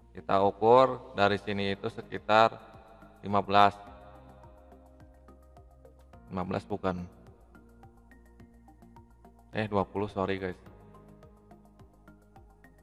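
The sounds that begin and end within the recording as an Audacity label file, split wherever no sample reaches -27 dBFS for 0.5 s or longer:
3.270000	3.690000	sound
6.350000	6.920000	sound
9.560000	10.510000	sound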